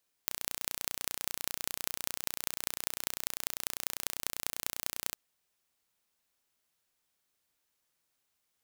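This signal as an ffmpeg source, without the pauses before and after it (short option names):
-f lavfi -i "aevalsrc='0.75*eq(mod(n,1465),0)*(0.5+0.5*eq(mod(n,8790),0))':d=4.86:s=44100"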